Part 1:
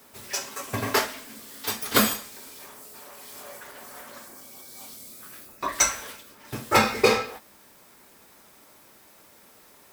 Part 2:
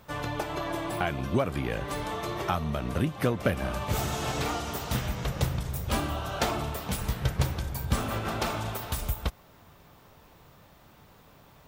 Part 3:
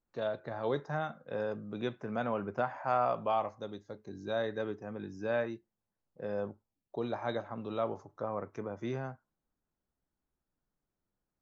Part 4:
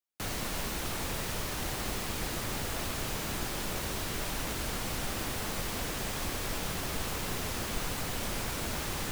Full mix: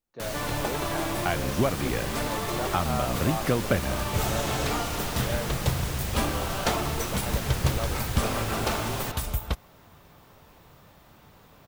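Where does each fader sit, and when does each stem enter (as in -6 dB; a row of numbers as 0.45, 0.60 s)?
-18.5, +1.5, -2.5, +0.5 dB; 1.20, 0.25, 0.00, 0.00 s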